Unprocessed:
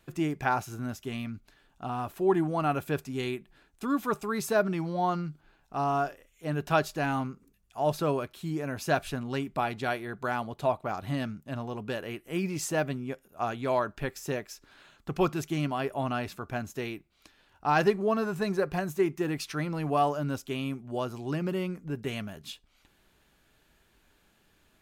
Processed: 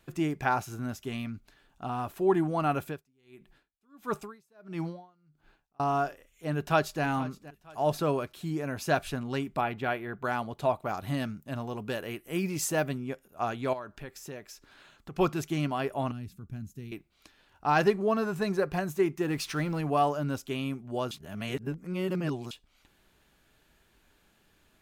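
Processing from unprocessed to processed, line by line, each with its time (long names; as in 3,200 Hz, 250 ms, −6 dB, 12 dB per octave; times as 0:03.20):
0:02.83–0:05.80: tremolo with a sine in dB 1.5 Hz, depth 38 dB
0:06.51–0:07.03: delay throw 470 ms, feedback 35%, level −17.5 dB
0:09.61–0:10.24: flat-topped bell 6,500 Hz −12 dB
0:10.75–0:12.98: high-shelf EQ 9,500 Hz +8.5 dB
0:13.73–0:15.18: downward compressor 2 to 1, threshold −45 dBFS
0:16.11–0:16.92: drawn EQ curve 190 Hz 0 dB, 670 Hz −26 dB, 5,500 Hz −13 dB, 9,200 Hz −9 dB
0:19.30–0:19.81: mu-law and A-law mismatch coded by mu
0:21.11–0:22.51: reverse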